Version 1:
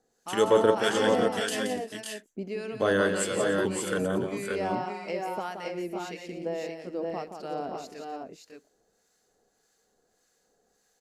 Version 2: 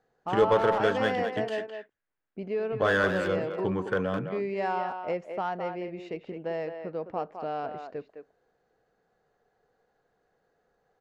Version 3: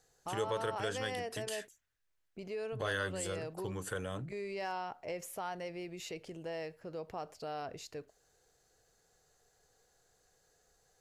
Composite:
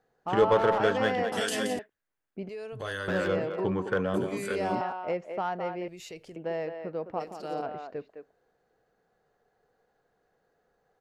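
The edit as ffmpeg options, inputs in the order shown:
-filter_complex "[0:a]asplit=3[s0][s1][s2];[2:a]asplit=2[s3][s4];[1:a]asplit=6[s5][s6][s7][s8][s9][s10];[s5]atrim=end=1.322[s11];[s0]atrim=start=1.318:end=1.792[s12];[s6]atrim=start=1.788:end=2.492[s13];[s3]atrim=start=2.488:end=3.082[s14];[s7]atrim=start=3.078:end=4.142[s15];[s1]atrim=start=4.138:end=4.812[s16];[s8]atrim=start=4.808:end=5.882[s17];[s4]atrim=start=5.878:end=6.362[s18];[s9]atrim=start=6.358:end=7.21[s19];[s2]atrim=start=7.19:end=7.63[s20];[s10]atrim=start=7.61[s21];[s11][s12]acrossfade=d=0.004:c1=hsin:c2=hsin[s22];[s22][s13]acrossfade=d=0.004:c1=hsin:c2=hsin[s23];[s23][s14]acrossfade=d=0.004:c1=hsin:c2=hsin[s24];[s24][s15]acrossfade=d=0.004:c1=hsin:c2=hsin[s25];[s25][s16]acrossfade=d=0.004:c1=hsin:c2=hsin[s26];[s26][s17]acrossfade=d=0.004:c1=hsin:c2=hsin[s27];[s27][s18]acrossfade=d=0.004:c1=hsin:c2=hsin[s28];[s28][s19]acrossfade=d=0.004:c1=hsin:c2=hsin[s29];[s29][s20]acrossfade=d=0.02:c1=tri:c2=tri[s30];[s30][s21]acrossfade=d=0.02:c1=tri:c2=tri"

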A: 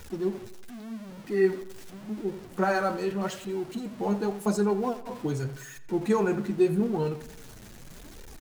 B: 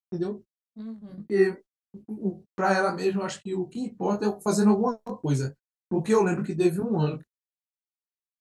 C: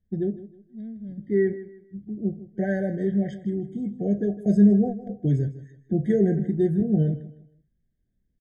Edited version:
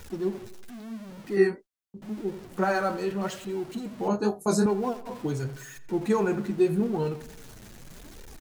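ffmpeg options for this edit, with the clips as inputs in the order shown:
-filter_complex "[1:a]asplit=2[s0][s1];[0:a]asplit=3[s2][s3][s4];[s2]atrim=end=1.372[s5];[s0]atrim=start=1.368:end=2.022[s6];[s3]atrim=start=2.018:end=4.082[s7];[s1]atrim=start=4.078:end=4.662[s8];[s4]atrim=start=4.658[s9];[s5][s6]acrossfade=d=0.004:c1=hsin:c2=hsin[s10];[s10][s7]acrossfade=d=0.004:c1=hsin:c2=hsin[s11];[s11][s8]acrossfade=d=0.004:c1=hsin:c2=hsin[s12];[s12][s9]acrossfade=d=0.004:c1=hsin:c2=hsin"

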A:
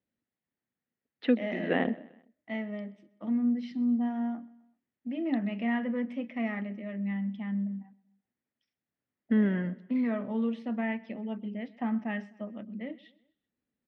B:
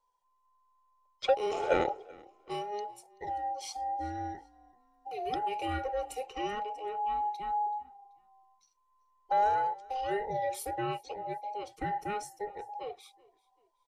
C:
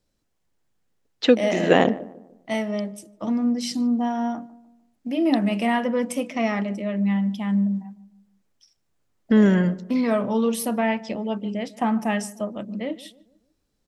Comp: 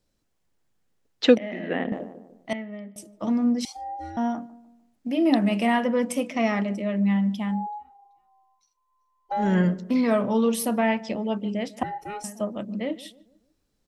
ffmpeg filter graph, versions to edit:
-filter_complex "[0:a]asplit=2[s0][s1];[1:a]asplit=3[s2][s3][s4];[2:a]asplit=6[s5][s6][s7][s8][s9][s10];[s5]atrim=end=1.382[s11];[s0]atrim=start=1.378:end=1.922[s12];[s6]atrim=start=1.918:end=2.532[s13];[s1]atrim=start=2.528:end=2.962[s14];[s7]atrim=start=2.958:end=3.652[s15];[s2]atrim=start=3.648:end=4.172[s16];[s8]atrim=start=4.168:end=7.67[s17];[s3]atrim=start=7.43:end=9.6[s18];[s9]atrim=start=9.36:end=11.832[s19];[s4]atrim=start=11.828:end=12.242[s20];[s10]atrim=start=12.238[s21];[s11][s12]acrossfade=d=0.004:c1=hsin:c2=hsin[s22];[s22][s13]acrossfade=d=0.004:c1=hsin:c2=hsin[s23];[s23][s14]acrossfade=d=0.004:c1=hsin:c2=hsin[s24];[s24][s15]acrossfade=d=0.004:c1=hsin:c2=hsin[s25];[s25][s16]acrossfade=d=0.004:c1=hsin:c2=hsin[s26];[s26][s17]acrossfade=d=0.004:c1=hsin:c2=hsin[s27];[s27][s18]acrossfade=d=0.24:c1=tri:c2=tri[s28];[s28][s19]acrossfade=d=0.24:c1=tri:c2=tri[s29];[s29][s20]acrossfade=d=0.004:c1=hsin:c2=hsin[s30];[s30][s21]acrossfade=d=0.004:c1=hsin:c2=hsin"

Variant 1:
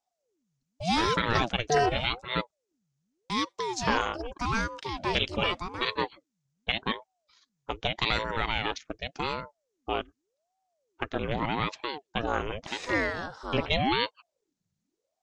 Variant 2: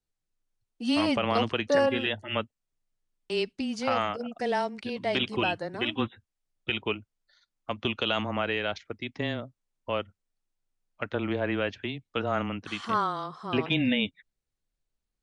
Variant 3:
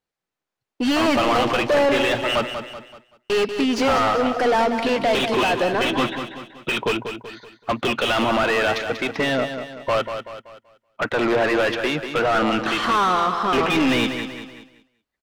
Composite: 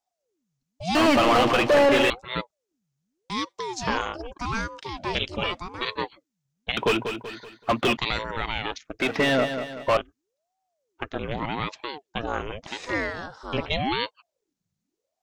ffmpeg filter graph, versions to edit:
-filter_complex "[2:a]asplit=3[s0][s1][s2];[0:a]asplit=4[s3][s4][s5][s6];[s3]atrim=end=0.952[s7];[s0]atrim=start=0.948:end=2.102[s8];[s4]atrim=start=2.098:end=6.772[s9];[s1]atrim=start=6.768:end=7.972[s10];[s5]atrim=start=7.968:end=9.002[s11];[s2]atrim=start=8.998:end=9.972[s12];[s6]atrim=start=9.968[s13];[s7][s8]acrossfade=d=0.004:c1=hsin:c2=hsin[s14];[s14][s9]acrossfade=d=0.004:c1=hsin:c2=hsin[s15];[s15][s10]acrossfade=d=0.004:c1=hsin:c2=hsin[s16];[s16][s11]acrossfade=d=0.004:c1=hsin:c2=hsin[s17];[s17][s12]acrossfade=d=0.004:c1=hsin:c2=hsin[s18];[s18][s13]acrossfade=d=0.004:c1=hsin:c2=hsin"

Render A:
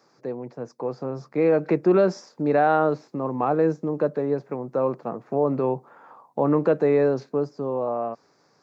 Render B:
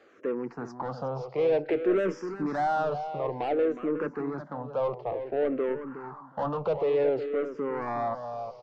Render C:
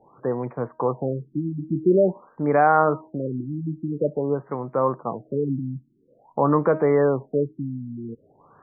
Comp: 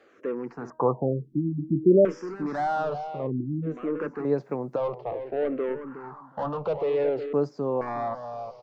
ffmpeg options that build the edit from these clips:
-filter_complex "[2:a]asplit=2[s0][s1];[0:a]asplit=2[s2][s3];[1:a]asplit=5[s4][s5][s6][s7][s8];[s4]atrim=end=0.702[s9];[s0]atrim=start=0.698:end=2.052[s10];[s5]atrim=start=2.048:end=3.32[s11];[s1]atrim=start=3.16:end=3.78[s12];[s6]atrim=start=3.62:end=4.252[s13];[s2]atrim=start=4.248:end=4.762[s14];[s7]atrim=start=4.758:end=7.332[s15];[s3]atrim=start=7.328:end=7.812[s16];[s8]atrim=start=7.808[s17];[s9][s10]acrossfade=d=0.004:c1=hsin:c2=hsin[s18];[s18][s11]acrossfade=d=0.004:c1=hsin:c2=hsin[s19];[s19][s12]acrossfade=d=0.16:c1=tri:c2=tri[s20];[s20][s13]acrossfade=d=0.16:c1=tri:c2=tri[s21];[s21][s14]acrossfade=d=0.004:c1=hsin:c2=hsin[s22];[s22][s15]acrossfade=d=0.004:c1=hsin:c2=hsin[s23];[s23][s16]acrossfade=d=0.004:c1=hsin:c2=hsin[s24];[s24][s17]acrossfade=d=0.004:c1=hsin:c2=hsin"

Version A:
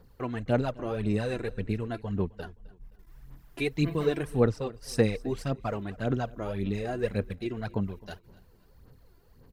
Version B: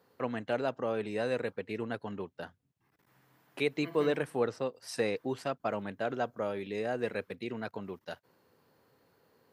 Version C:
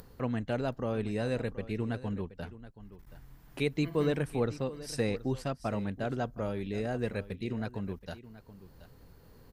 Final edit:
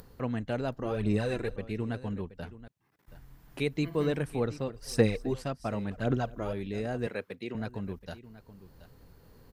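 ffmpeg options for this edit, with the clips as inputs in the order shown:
-filter_complex "[0:a]asplit=3[s0][s1][s2];[1:a]asplit=2[s3][s4];[2:a]asplit=6[s5][s6][s7][s8][s9][s10];[s5]atrim=end=0.832[s11];[s0]atrim=start=0.828:end=1.562[s12];[s6]atrim=start=1.558:end=2.682[s13];[s3]atrim=start=2.678:end=3.082[s14];[s7]atrim=start=3.078:end=4.682[s15];[s1]atrim=start=4.678:end=5.342[s16];[s8]atrim=start=5.338:end=5.912[s17];[s2]atrim=start=5.908:end=6.532[s18];[s9]atrim=start=6.528:end=7.072[s19];[s4]atrim=start=7.068:end=7.552[s20];[s10]atrim=start=7.548[s21];[s11][s12]acrossfade=d=0.004:c1=hsin:c2=hsin[s22];[s22][s13]acrossfade=d=0.004:c1=hsin:c2=hsin[s23];[s23][s14]acrossfade=d=0.004:c1=hsin:c2=hsin[s24];[s24][s15]acrossfade=d=0.004:c1=hsin:c2=hsin[s25];[s25][s16]acrossfade=d=0.004:c1=hsin:c2=hsin[s26];[s26][s17]acrossfade=d=0.004:c1=hsin:c2=hsin[s27];[s27][s18]acrossfade=d=0.004:c1=hsin:c2=hsin[s28];[s28][s19]acrossfade=d=0.004:c1=hsin:c2=hsin[s29];[s29][s20]acrossfade=d=0.004:c1=hsin:c2=hsin[s30];[s30][s21]acrossfade=d=0.004:c1=hsin:c2=hsin"

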